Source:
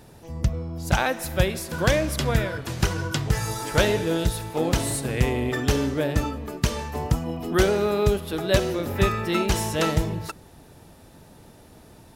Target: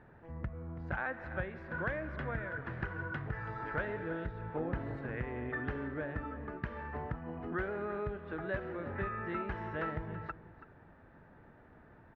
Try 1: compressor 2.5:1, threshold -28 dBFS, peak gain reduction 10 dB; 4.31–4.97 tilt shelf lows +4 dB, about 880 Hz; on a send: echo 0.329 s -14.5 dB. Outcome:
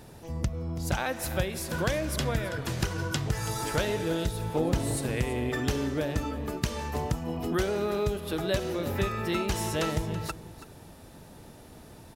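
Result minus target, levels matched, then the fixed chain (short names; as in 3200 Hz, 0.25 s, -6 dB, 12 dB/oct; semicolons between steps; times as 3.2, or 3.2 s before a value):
2000 Hz band -5.5 dB
compressor 2.5:1, threshold -28 dBFS, peak gain reduction 10 dB; ladder low-pass 1900 Hz, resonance 55%; 4.31–4.97 tilt shelf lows +4 dB, about 880 Hz; on a send: echo 0.329 s -14.5 dB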